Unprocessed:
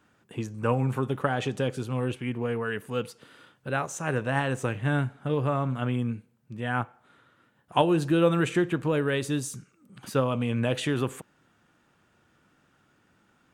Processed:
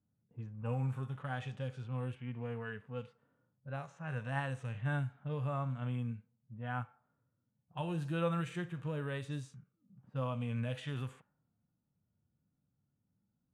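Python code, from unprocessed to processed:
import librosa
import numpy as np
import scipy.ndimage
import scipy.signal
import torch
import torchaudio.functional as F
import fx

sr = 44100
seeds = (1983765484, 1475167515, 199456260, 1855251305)

y = fx.env_lowpass(x, sr, base_hz=320.0, full_db=-23.0)
y = fx.hpss(y, sr, part='percussive', gain_db=-15)
y = fx.peak_eq(y, sr, hz=350.0, db=-13.0, octaves=0.93)
y = y * librosa.db_to_amplitude(-6.0)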